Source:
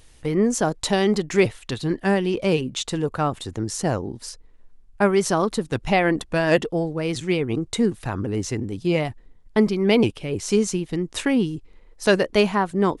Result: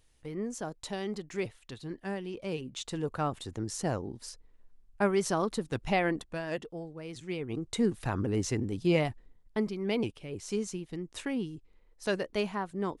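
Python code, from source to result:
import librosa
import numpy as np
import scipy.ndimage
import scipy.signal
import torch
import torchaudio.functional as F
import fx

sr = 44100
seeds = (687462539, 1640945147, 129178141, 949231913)

y = fx.gain(x, sr, db=fx.line((2.42, -16.0), (3.09, -8.5), (6.04, -8.5), (6.5, -17.0), (7.11, -17.0), (8.02, -4.5), (9.05, -4.5), (9.64, -13.0)))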